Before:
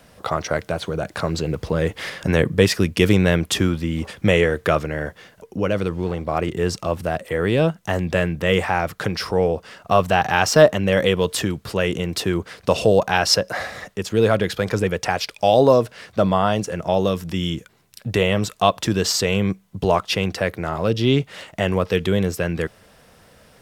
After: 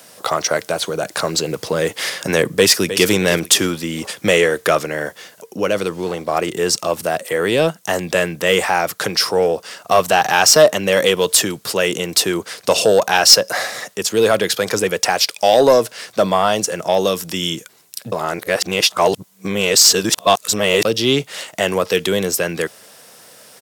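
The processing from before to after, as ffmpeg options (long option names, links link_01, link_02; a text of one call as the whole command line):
ffmpeg -i in.wav -filter_complex "[0:a]asplit=2[link_01][link_02];[link_02]afade=type=in:start_time=2.52:duration=0.01,afade=type=out:start_time=3.08:duration=0.01,aecho=0:1:310|620|930:0.223872|0.0783552|0.0274243[link_03];[link_01][link_03]amix=inputs=2:normalize=0,asplit=3[link_04][link_05][link_06];[link_04]atrim=end=18.122[link_07];[link_05]atrim=start=18.118:end=20.852,asetpts=PTS-STARTPTS,areverse[link_08];[link_06]atrim=start=20.848[link_09];[link_07][link_08]acrossfade=duration=0.004:curve1=hsin:curve2=hsin[link_10];[link_10][link_09]acrossfade=duration=0.004:curve1=hsin:curve2=hsin,highpass=frequency=110:width=0.5412,highpass=frequency=110:width=1.3066,bass=frequency=250:gain=-10,treble=frequency=4000:gain=11,acontrast=52,volume=-1dB" out.wav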